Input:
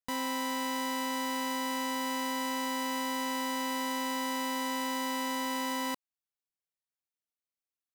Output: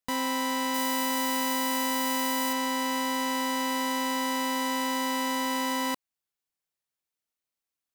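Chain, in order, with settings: 0.74–2.53 s: treble shelf 9.3 kHz +9 dB; trim +4.5 dB

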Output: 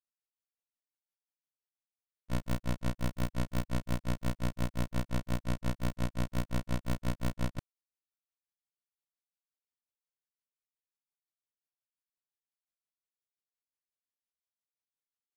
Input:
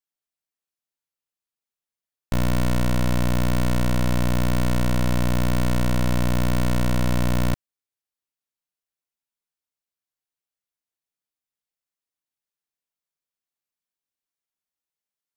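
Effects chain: granulator 143 ms, grains 5.7 per s, pitch spread up and down by 0 st; trim -7.5 dB

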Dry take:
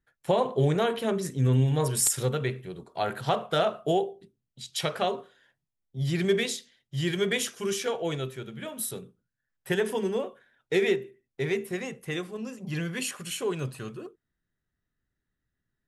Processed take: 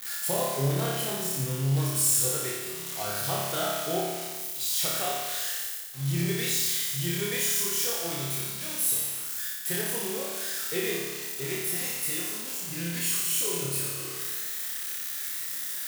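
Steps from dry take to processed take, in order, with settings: zero-crossing glitches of -17 dBFS; on a send: flutter echo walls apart 5 m, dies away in 1.3 s; on the sum: trim -9 dB

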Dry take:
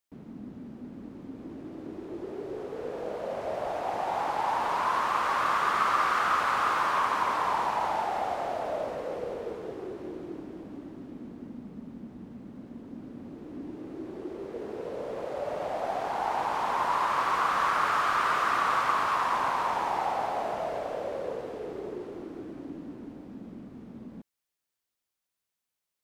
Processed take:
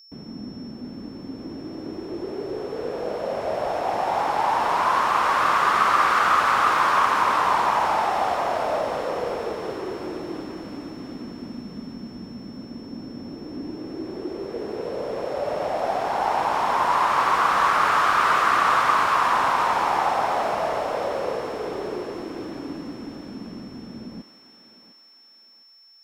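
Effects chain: whistle 5.4 kHz -54 dBFS; thinning echo 706 ms, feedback 60%, high-pass 900 Hz, level -7.5 dB; trim +6.5 dB

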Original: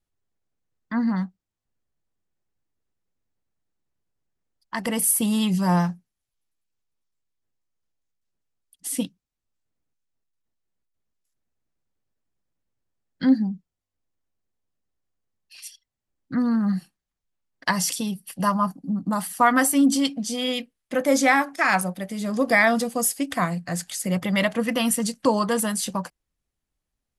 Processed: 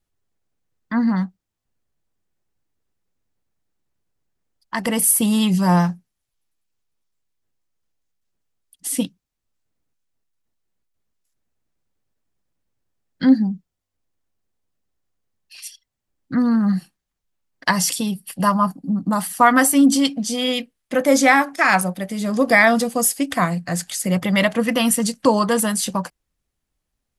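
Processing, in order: 17.88–18.96 s: band-stop 6 kHz, Q 11; trim +4.5 dB

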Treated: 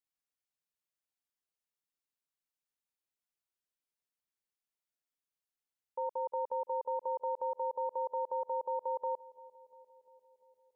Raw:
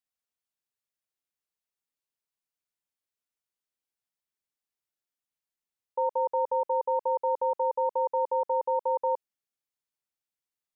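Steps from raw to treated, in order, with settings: peak limiter -24.5 dBFS, peak gain reduction 5 dB; filtered feedback delay 347 ms, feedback 76%, low-pass 950 Hz, level -20.5 dB; trim -4 dB

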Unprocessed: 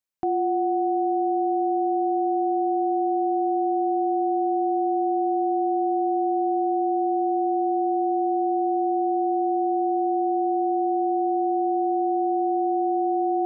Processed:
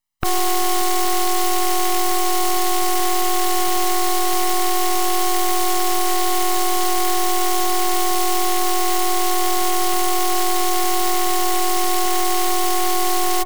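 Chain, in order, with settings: spectral contrast reduction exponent 0.29; half-wave rectifier; comb 1 ms, depth 79%; loudspeaker Doppler distortion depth 0.72 ms; trim +8 dB

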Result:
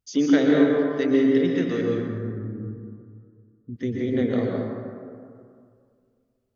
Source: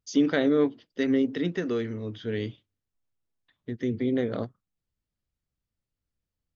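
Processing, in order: 1.81–3.76 s: inverse Chebyshev low-pass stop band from 1.2 kHz, stop band 70 dB; plate-style reverb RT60 2.2 s, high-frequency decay 0.4×, pre-delay 110 ms, DRR -2 dB

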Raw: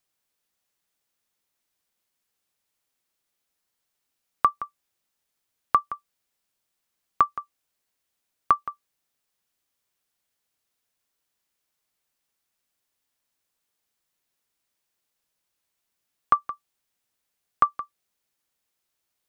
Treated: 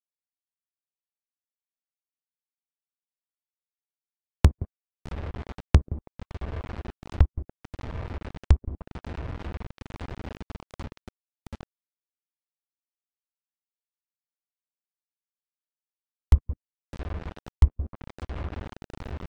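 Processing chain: high-pass 92 Hz 12 dB/octave; echo that smears into a reverb 825 ms, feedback 64%, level -15 dB; in parallel at +2.5 dB: compression 10:1, threshold -45 dBFS, peak gain reduction 30 dB; on the sum: sample-rate reducer 1.1 kHz, jitter 0%; flange 1.5 Hz, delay 7.4 ms, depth 6.9 ms, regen -49%; bit crusher 7-bit; low-pass that closes with the level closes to 390 Hz, closed at -30.5 dBFS; trim +6.5 dB; Vorbis 128 kbps 44.1 kHz

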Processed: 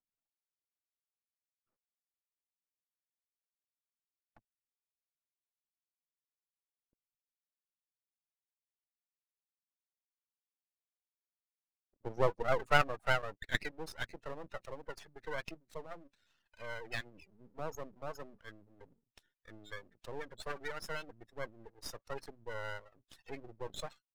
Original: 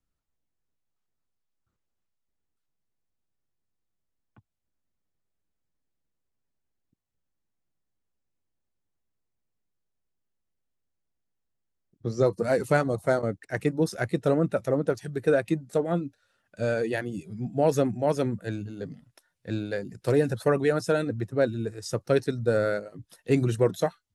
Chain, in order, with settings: spectral gate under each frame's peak -20 dB strong; band-pass sweep 670 Hz -> 3 kHz, 11.71–14.21 s; half-wave rectifier; trim +8 dB

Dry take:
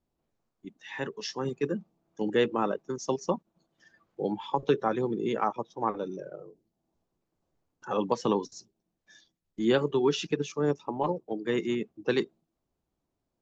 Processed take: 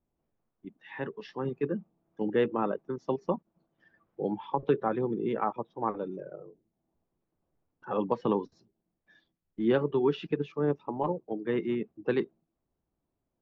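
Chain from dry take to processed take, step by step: distance through air 430 m

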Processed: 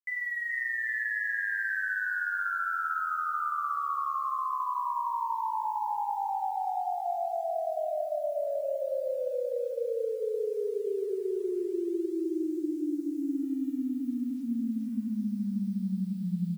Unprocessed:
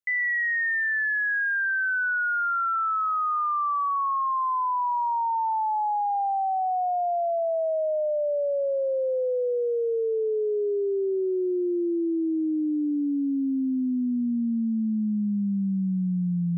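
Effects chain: 7.58–8.47 s: high-pass 67 Hz 24 dB/octave; de-hum 237.2 Hz, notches 3; bit crusher 9-bit; flange 1.3 Hz, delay 8 ms, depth 4.6 ms, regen -49%; bouncing-ball echo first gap 440 ms, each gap 0.8×, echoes 5; trim -4 dB

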